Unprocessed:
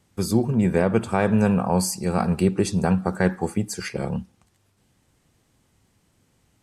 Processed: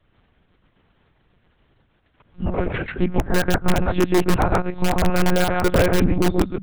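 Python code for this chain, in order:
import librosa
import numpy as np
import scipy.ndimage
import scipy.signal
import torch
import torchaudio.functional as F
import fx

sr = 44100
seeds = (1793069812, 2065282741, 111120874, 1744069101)

p1 = x[::-1].copy()
p2 = scipy.signal.sosfilt(scipy.signal.butter(2, 74.0, 'highpass', fs=sr, output='sos'), p1)
p3 = fx.peak_eq(p2, sr, hz=1500.0, db=4.0, octaves=0.47)
p4 = p3 + fx.echo_single(p3, sr, ms=133, db=-3.5, dry=0)
p5 = fx.transient(p4, sr, attack_db=4, sustain_db=-7)
p6 = fx.hum_notches(p5, sr, base_hz=50, count=5)
p7 = fx.lpc_monotone(p6, sr, seeds[0], pitch_hz=180.0, order=8)
p8 = (np.mod(10.0 ** (10.5 / 20.0) * p7 + 1.0, 2.0) - 1.0) / 10.0 ** (10.5 / 20.0)
y = p7 + (p8 * librosa.db_to_amplitude(-5.5))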